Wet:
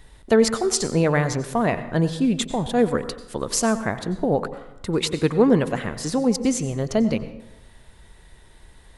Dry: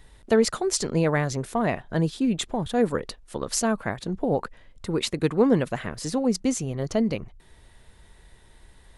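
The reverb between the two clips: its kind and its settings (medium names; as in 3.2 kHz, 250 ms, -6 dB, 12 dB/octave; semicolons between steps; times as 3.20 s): plate-style reverb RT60 0.86 s, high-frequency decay 0.6×, pre-delay 80 ms, DRR 12 dB; trim +3 dB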